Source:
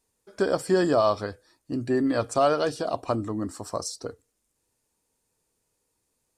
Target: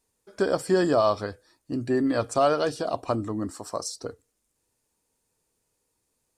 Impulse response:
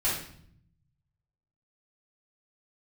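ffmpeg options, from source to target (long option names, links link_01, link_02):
-filter_complex "[0:a]asettb=1/sr,asplit=3[link_01][link_02][link_03];[link_01]atrim=end=3.504[link_04];[link_02]atrim=start=3.5:end=3.95,asetpts=PTS-STARTPTS,afade=type=in:duration=0.004:curve=qsin,afade=type=out:start_time=0.446:duration=0.004:curve=qsin,lowshelf=frequency=130:gain=-11[link_05];[link_03]atrim=start=3.946[link_06];[link_04][link_05]acrossfade=duration=0.004:curve1=hsin:curve2=qsin[link_07];[link_07][link_06]acrossfade=duration=0.004:curve1=qsin:curve2=hsin"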